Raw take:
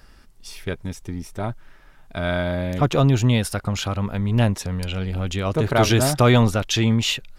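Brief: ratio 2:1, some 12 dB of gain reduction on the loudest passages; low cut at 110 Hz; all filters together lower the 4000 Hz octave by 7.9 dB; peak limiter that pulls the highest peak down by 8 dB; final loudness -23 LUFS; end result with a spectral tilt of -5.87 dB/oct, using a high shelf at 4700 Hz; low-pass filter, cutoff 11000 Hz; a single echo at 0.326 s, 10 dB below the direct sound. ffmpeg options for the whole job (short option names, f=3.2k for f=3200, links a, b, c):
-af "highpass=110,lowpass=11k,equalizer=f=4k:t=o:g=-8,highshelf=f=4.7k:g=-6,acompressor=threshold=-35dB:ratio=2,alimiter=limit=-22dB:level=0:latency=1,aecho=1:1:326:0.316,volume=11.5dB"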